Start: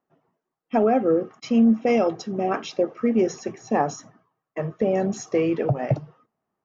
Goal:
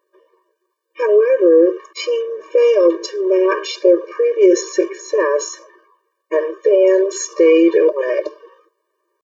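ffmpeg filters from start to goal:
-af "atempo=0.72,alimiter=level_in=6.68:limit=0.891:release=50:level=0:latency=1,afftfilt=real='re*eq(mod(floor(b*sr/1024/310),2),1)':imag='im*eq(mod(floor(b*sr/1024/310),2),1)':win_size=1024:overlap=0.75,volume=0.891"

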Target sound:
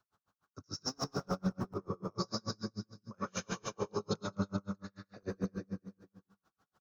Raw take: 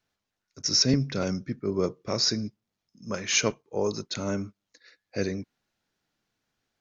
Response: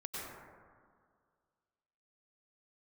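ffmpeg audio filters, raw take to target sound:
-filter_complex "[0:a]highpass=f=85:p=1,bandreject=f=169.4:t=h:w=4,bandreject=f=338.8:t=h:w=4,bandreject=f=508.2:t=h:w=4,bandreject=f=677.6:t=h:w=4,bandreject=f=847:t=h:w=4,bandreject=f=1016.4:t=h:w=4,bandreject=f=1185.8:t=h:w=4,bandreject=f=1355.2:t=h:w=4,bandreject=f=1524.6:t=h:w=4,bandreject=f=1694:t=h:w=4,bandreject=f=1863.4:t=h:w=4,bandreject=f=2032.8:t=h:w=4,bandreject=f=2202.2:t=h:w=4,bandreject=f=2371.6:t=h:w=4,bandreject=f=2541:t=h:w=4,bandreject=f=2710.4:t=h:w=4,bandreject=f=2879.8:t=h:w=4,bandreject=f=3049.2:t=h:w=4,bandreject=f=3218.6:t=h:w=4,bandreject=f=3388:t=h:w=4,bandreject=f=3557.4:t=h:w=4,bandreject=f=3726.8:t=h:w=4,bandreject=f=3896.2:t=h:w=4,bandreject=f=4065.6:t=h:w=4,bandreject=f=4235:t=h:w=4,bandreject=f=4404.4:t=h:w=4,bandreject=f=4573.8:t=h:w=4,bandreject=f=4743.2:t=h:w=4,bandreject=f=4912.6:t=h:w=4,bandreject=f=5082:t=h:w=4,bandreject=f=5251.4:t=h:w=4,bandreject=f=5420.8:t=h:w=4,bandreject=f=5590.2:t=h:w=4,acrossover=split=160[s0][s1];[s0]aeval=exprs='(mod(39.8*val(0)+1,2)-1)/39.8':c=same[s2];[s1]equalizer=f=350:t=o:w=2.4:g=-6[s3];[s2][s3]amix=inputs=2:normalize=0,acontrast=76,highshelf=f=1600:t=q:w=3:g=-8.5,areverse,acompressor=threshold=0.02:ratio=10,areverse,aecho=1:1:214|428|642|856:0.708|0.241|0.0818|0.0278[s4];[1:a]atrim=start_sample=2205,atrim=end_sample=6174[s5];[s4][s5]afir=irnorm=-1:irlink=0,aeval=exprs='val(0)*pow(10,-39*(0.5-0.5*cos(2*PI*6.8*n/s))/20)':c=same,volume=2.24"

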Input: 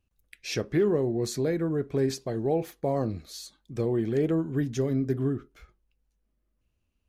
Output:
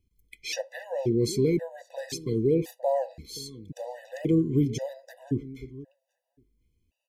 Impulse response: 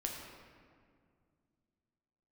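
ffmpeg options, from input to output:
-filter_complex "[0:a]asuperstop=centerf=1300:order=4:qfactor=1.5,asplit=2[s0][s1];[s1]adelay=528,lowpass=f=2300:p=1,volume=0.112,asplit=2[s2][s3];[s3]adelay=528,lowpass=f=2300:p=1,volume=0.16[s4];[s0][s2][s4]amix=inputs=3:normalize=0,afftfilt=real='re*gt(sin(2*PI*0.94*pts/sr)*(1-2*mod(floor(b*sr/1024/500),2)),0)':imag='im*gt(sin(2*PI*0.94*pts/sr)*(1-2*mod(floor(b*sr/1024/500),2)),0)':win_size=1024:overlap=0.75,volume=1.68"

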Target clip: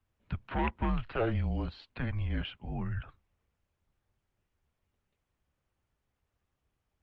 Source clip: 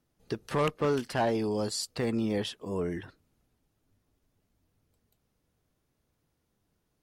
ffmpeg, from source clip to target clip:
-filter_complex "[0:a]acrossover=split=340[s0][s1];[s0]alimiter=level_in=2.51:limit=0.0631:level=0:latency=1:release=109,volume=0.398[s2];[s2][s1]amix=inputs=2:normalize=0,lowshelf=f=370:t=q:w=3:g=6,highpass=f=320:t=q:w=0.5412,highpass=f=320:t=q:w=1.307,lowpass=f=3400:t=q:w=0.5176,lowpass=f=3400:t=q:w=0.7071,lowpass=f=3400:t=q:w=1.932,afreqshift=-240" -ar 48000 -c:a libopus -b:a 32k

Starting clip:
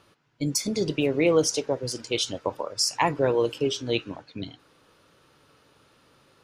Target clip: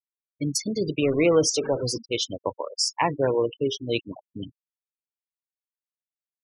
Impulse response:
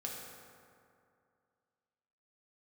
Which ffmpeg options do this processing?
-filter_complex "[0:a]asettb=1/sr,asplit=3[s0][s1][s2];[s0]atrim=end=1.024[s3];[s1]atrim=start=1.02:end=1.98,asetpts=PTS-STARTPTS,afade=t=in:d=0.004:c=qsin,afade=t=out:st=0.956:d=0.004:c=qsin,aeval=exprs='val(0)+0.5*0.0447*sgn(val(0))':c=same[s4];[s2]atrim=start=1.976[s5];[s3][s4]acrossfade=d=0.004:c1=hsin:c2=qsin[s6];[s6][s5]acrossfade=d=0.004:c1=qsin:c2=hsin,asettb=1/sr,asplit=3[s7][s8][s9];[s7]atrim=end=2.994[s10];[s8]atrim=start=2.99:end=3.7,asetpts=PTS-STARTPTS,afade=t=in:d=0.004:c=qsin,afade=t=out:st=0.706:d=0.004:c=qsin,highshelf=f=5300:g=-6[s11];[s9]atrim=start=3.696[s12];[s10][s11]acrossfade=d=0.004:c1=hsin:c2=qsin[s13];[s13][s12]acrossfade=d=0.004:c1=qsin:c2=hsin,afftfilt=real='re*gte(hypot(re,im),0.0447)':imag='im*gte(hypot(re,im),0.0447)':win_size=1024:overlap=0.75"

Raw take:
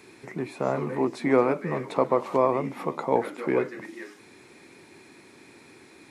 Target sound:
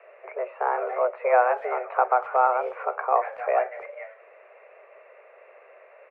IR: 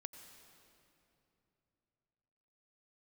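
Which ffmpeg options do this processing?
-filter_complex "[0:a]highpass=f=150:t=q:w=0.5412,highpass=f=150:t=q:w=1.307,lowpass=f=2000:t=q:w=0.5176,lowpass=f=2000:t=q:w=0.7071,lowpass=f=2000:t=q:w=1.932,afreqshift=250,asplit=2[s0][s1];[s1]adelay=240,highpass=300,lowpass=3400,asoftclip=type=hard:threshold=0.112,volume=0.0316[s2];[s0][s2]amix=inputs=2:normalize=0,volume=1.19"

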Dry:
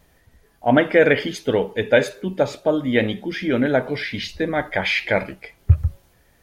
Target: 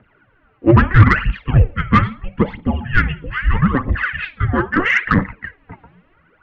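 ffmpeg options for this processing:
-af "aphaser=in_gain=1:out_gain=1:delay=4.6:decay=0.69:speed=0.77:type=triangular,highpass=f=280:t=q:w=0.5412,highpass=f=280:t=q:w=1.307,lowpass=f=2900:t=q:w=0.5176,lowpass=f=2900:t=q:w=0.7071,lowpass=f=2900:t=q:w=1.932,afreqshift=-380,acontrast=51,volume=0.891"

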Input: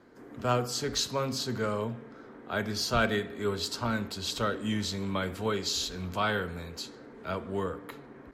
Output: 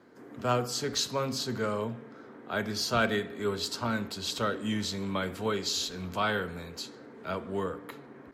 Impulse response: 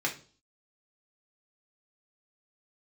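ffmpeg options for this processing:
-af "highpass=99"

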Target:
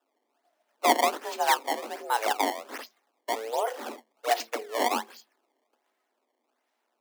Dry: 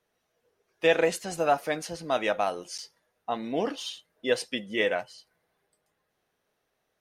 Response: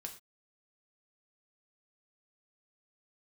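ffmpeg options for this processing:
-af "bandreject=f=60:t=h:w=6,bandreject=f=120:t=h:w=6,bandreject=f=180:t=h:w=6,bandreject=f=240:t=h:w=6,bandreject=f=300:t=h:w=6,acrusher=samples=21:mix=1:aa=0.000001:lfo=1:lforange=33.6:lforate=1.3,afreqshift=220"

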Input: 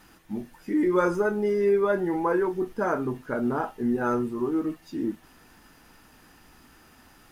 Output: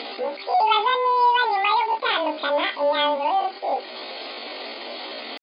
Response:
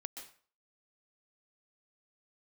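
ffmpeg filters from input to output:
-af "aeval=exprs='val(0)+0.5*0.0237*sgn(val(0))':c=same,asetrate=59535,aresample=44100,bandreject=f=930:w=6.7,acompressor=mode=upward:threshold=0.0316:ratio=2.5,asetrate=80880,aresample=44100,atempo=0.545254,afftfilt=real='re*between(b*sr/4096,240,5000)':imag='im*between(b*sr/4096,240,5000)':win_size=4096:overlap=0.75,afreqshift=-19,volume=1.5" -ar 32000 -c:a aac -b:a 48k

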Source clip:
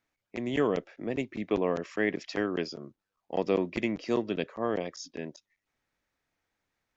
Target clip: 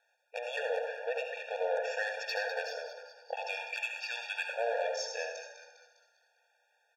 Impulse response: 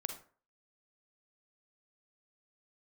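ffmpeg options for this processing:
-filter_complex "[0:a]asettb=1/sr,asplit=3[s0][s1][s2];[s0]atrim=end=3.344[s3];[s1]atrim=start=3.34:end=4.48,asetpts=PTS-STARTPTS,afade=t=in:d=0.004:c=qsin,afade=t=out:st=1.136:d=0.004:c=qsin,highpass=f=1200:w=0.5412,highpass=f=1200:w=1.3066[s4];[s2]atrim=start=4.476[s5];[s3][s4]acrossfade=d=0.004:c1=hsin:c2=qsin[s6];[s6][s5]acrossfade=d=0.004:c1=qsin:c2=hsin,acompressor=threshold=0.0355:ratio=6,asplit=2[s7][s8];[s8]highpass=f=720:p=1,volume=7.94,asoftclip=type=tanh:threshold=0.1[s9];[s7][s9]amix=inputs=2:normalize=0,lowpass=f=3000:p=1,volume=0.501,asplit=7[s10][s11][s12][s13][s14][s15][s16];[s11]adelay=201,afreqshift=-79,volume=0.299[s17];[s12]adelay=402,afreqshift=-158,volume=0.153[s18];[s13]adelay=603,afreqshift=-237,volume=0.0776[s19];[s14]adelay=804,afreqshift=-316,volume=0.0398[s20];[s15]adelay=1005,afreqshift=-395,volume=0.0202[s21];[s16]adelay=1206,afreqshift=-474,volume=0.0104[s22];[s10][s17][s18][s19][s20][s21][s22]amix=inputs=7:normalize=0[s23];[1:a]atrim=start_sample=2205,asetrate=27783,aresample=44100[s24];[s23][s24]afir=irnorm=-1:irlink=0,afftfilt=real='re*eq(mod(floor(b*sr/1024/470),2),1)':imag='im*eq(mod(floor(b*sr/1024/470),2),1)':win_size=1024:overlap=0.75"

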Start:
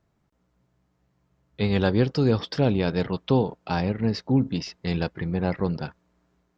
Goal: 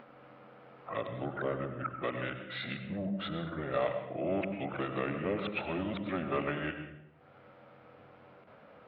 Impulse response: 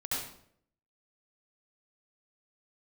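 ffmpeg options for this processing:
-filter_complex "[0:a]areverse,asplit=2[s0][s1];[s1]aeval=exprs='0.422*sin(PI/2*1.78*val(0)/0.422)':c=same,volume=0.501[s2];[s0][s2]amix=inputs=2:normalize=0,acompressor=threshold=0.00891:ratio=2,highpass=410,equalizer=f=470:t=q:w=4:g=-6,equalizer=f=740:t=q:w=4:g=6,equalizer=f=1300:t=q:w=4:g=-4,equalizer=f=1800:t=q:w=4:g=7,equalizer=f=3000:t=q:w=4:g=4,lowpass=f=4100:w=0.5412,lowpass=f=4100:w=1.3066,acompressor=mode=upward:threshold=0.00398:ratio=2.5,equalizer=f=1100:w=1.5:g=2,asplit=2[s3][s4];[1:a]atrim=start_sample=2205,lowshelf=f=340:g=7[s5];[s4][s5]afir=irnorm=-1:irlink=0,volume=0.316[s6];[s3][s6]amix=inputs=2:normalize=0,asetrate=32667,aresample=44100"

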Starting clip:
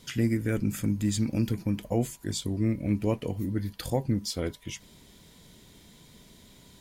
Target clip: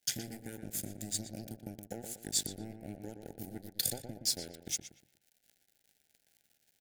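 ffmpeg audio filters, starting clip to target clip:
-filter_complex "[0:a]highpass=f=100:w=0.5412,highpass=f=100:w=1.3066,equalizer=f=2900:t=o:w=0.29:g=-11,acompressor=threshold=0.0178:ratio=12,aexciter=amount=4.7:drive=2.8:freq=3300,aeval=exprs='sgn(val(0))*max(abs(val(0))-0.0112,0)':c=same,asuperstop=centerf=1100:order=12:qfactor=2,asplit=2[s0][s1];[s1]adelay=119,lowpass=f=2100:p=1,volume=0.473,asplit=2[s2][s3];[s3]adelay=119,lowpass=f=2100:p=1,volume=0.38,asplit=2[s4][s5];[s5]adelay=119,lowpass=f=2100:p=1,volume=0.38,asplit=2[s6][s7];[s7]adelay=119,lowpass=f=2100:p=1,volume=0.38[s8];[s0][s2][s4][s6][s8]amix=inputs=5:normalize=0"

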